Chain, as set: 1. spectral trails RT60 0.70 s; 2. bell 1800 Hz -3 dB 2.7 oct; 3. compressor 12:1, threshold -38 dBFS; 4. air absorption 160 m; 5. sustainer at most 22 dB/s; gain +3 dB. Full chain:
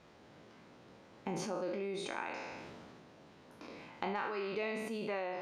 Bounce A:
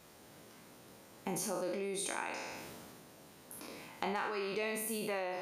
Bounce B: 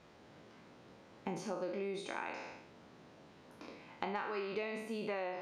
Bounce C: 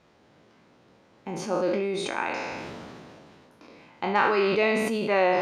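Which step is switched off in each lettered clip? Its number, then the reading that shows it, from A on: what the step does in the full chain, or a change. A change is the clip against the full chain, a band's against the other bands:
4, 8 kHz band +11.5 dB; 5, 8 kHz band -3.0 dB; 3, mean gain reduction 6.5 dB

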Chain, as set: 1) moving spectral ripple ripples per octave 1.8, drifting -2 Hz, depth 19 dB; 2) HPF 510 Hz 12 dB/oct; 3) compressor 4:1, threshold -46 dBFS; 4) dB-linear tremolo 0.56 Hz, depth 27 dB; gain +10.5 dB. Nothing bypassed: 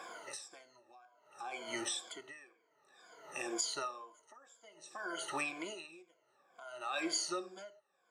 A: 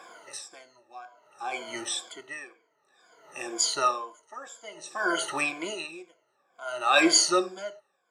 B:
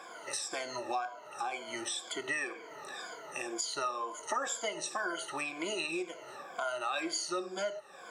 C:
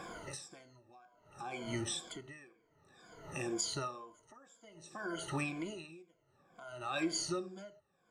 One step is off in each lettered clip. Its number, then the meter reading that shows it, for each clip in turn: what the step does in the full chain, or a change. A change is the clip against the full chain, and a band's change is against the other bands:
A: 3, mean gain reduction 9.0 dB; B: 4, momentary loudness spread change -11 LU; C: 2, 125 Hz band +20.5 dB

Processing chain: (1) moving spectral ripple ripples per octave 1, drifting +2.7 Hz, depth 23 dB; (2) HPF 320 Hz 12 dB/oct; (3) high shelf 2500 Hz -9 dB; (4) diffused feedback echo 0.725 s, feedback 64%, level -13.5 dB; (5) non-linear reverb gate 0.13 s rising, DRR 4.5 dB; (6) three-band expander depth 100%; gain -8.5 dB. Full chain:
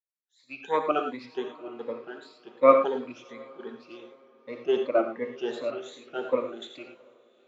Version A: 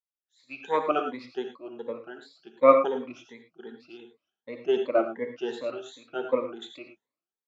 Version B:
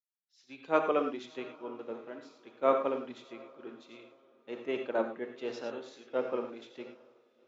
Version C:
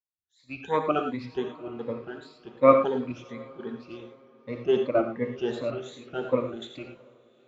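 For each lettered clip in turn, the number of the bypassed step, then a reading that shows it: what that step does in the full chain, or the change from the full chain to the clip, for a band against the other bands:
4, momentary loudness spread change +2 LU; 1, loudness change -7.0 LU; 2, 250 Hz band +4.0 dB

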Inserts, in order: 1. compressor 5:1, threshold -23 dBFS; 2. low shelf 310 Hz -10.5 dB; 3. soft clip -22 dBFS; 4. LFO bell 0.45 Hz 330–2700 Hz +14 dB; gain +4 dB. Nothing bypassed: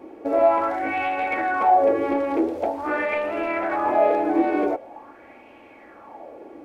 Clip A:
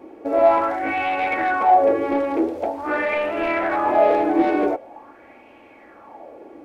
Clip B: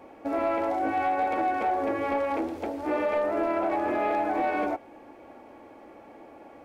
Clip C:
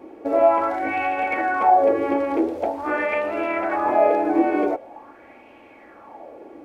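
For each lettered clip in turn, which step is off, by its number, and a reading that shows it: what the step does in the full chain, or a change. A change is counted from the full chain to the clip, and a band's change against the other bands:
1, mean gain reduction 2.0 dB; 4, crest factor change -6.0 dB; 3, distortion -21 dB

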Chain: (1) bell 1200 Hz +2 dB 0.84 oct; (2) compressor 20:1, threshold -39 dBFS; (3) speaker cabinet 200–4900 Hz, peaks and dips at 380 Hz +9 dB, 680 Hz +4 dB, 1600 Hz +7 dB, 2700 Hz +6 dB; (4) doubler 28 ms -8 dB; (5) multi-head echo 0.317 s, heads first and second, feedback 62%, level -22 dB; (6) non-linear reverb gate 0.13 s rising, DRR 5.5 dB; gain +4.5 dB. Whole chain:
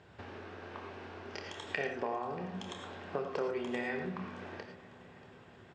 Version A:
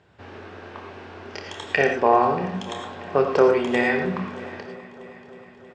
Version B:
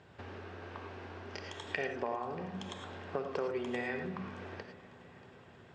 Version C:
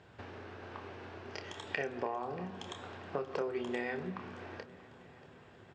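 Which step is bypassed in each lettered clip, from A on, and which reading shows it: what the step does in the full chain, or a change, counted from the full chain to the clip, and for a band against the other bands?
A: 2, mean gain reduction 8.5 dB; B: 4, 125 Hz band +1.5 dB; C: 6, loudness change -1.0 LU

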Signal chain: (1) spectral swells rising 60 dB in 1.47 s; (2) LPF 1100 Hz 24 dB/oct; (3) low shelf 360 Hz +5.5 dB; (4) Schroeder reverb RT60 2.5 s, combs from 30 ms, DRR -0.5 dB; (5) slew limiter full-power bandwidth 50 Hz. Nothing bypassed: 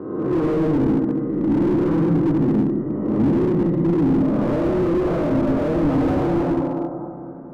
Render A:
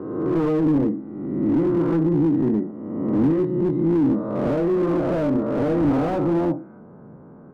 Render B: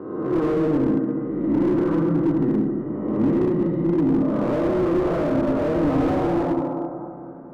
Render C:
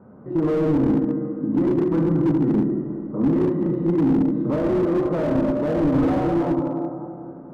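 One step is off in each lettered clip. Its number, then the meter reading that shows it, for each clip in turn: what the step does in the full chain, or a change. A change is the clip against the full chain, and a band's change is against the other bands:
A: 4, loudness change -1.5 LU; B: 3, 125 Hz band -3.5 dB; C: 1, momentary loudness spread change +3 LU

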